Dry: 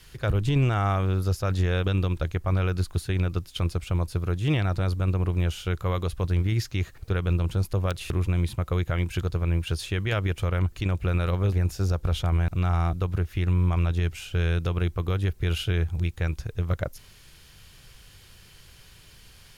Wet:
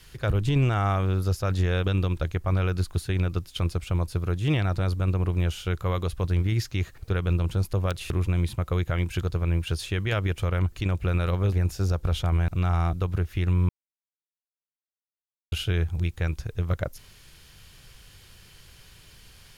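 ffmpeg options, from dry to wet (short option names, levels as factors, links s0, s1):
-filter_complex "[0:a]asplit=3[s0][s1][s2];[s0]atrim=end=13.69,asetpts=PTS-STARTPTS,afade=t=out:st=13.686:d=0.004:c=hsin[s3];[s1]atrim=start=13.69:end=15.52,asetpts=PTS-STARTPTS,volume=0[s4];[s2]atrim=start=15.52,asetpts=PTS-STARTPTS,afade=t=in:d=0.004:c=hsin[s5];[s3][s4][s5]concat=n=3:v=0:a=1"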